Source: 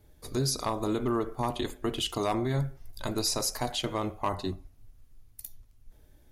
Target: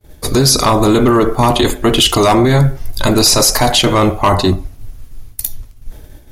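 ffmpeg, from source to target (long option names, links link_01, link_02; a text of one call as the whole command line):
ffmpeg -i in.wav -af "agate=range=-33dB:threshold=-51dB:ratio=3:detection=peak,apsyclip=29.5dB,volume=-5.5dB" out.wav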